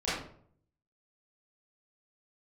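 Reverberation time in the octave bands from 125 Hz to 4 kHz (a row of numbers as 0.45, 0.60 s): 0.90, 0.70, 0.65, 0.55, 0.45, 0.35 s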